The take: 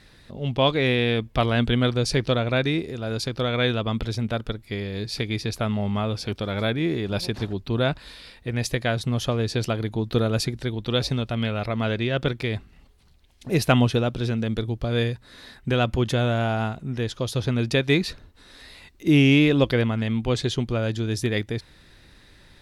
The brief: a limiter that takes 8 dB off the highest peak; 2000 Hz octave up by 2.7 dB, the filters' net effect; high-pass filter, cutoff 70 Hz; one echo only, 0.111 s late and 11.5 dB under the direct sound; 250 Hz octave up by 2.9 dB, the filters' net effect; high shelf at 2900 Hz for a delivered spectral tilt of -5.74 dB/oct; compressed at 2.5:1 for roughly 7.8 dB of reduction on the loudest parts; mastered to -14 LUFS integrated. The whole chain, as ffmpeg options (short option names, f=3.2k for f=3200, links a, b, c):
-af "highpass=70,equalizer=f=250:t=o:g=3.5,equalizer=f=2k:t=o:g=6.5,highshelf=f=2.9k:g=-7.5,acompressor=threshold=-23dB:ratio=2.5,alimiter=limit=-17dB:level=0:latency=1,aecho=1:1:111:0.266,volume=14.5dB"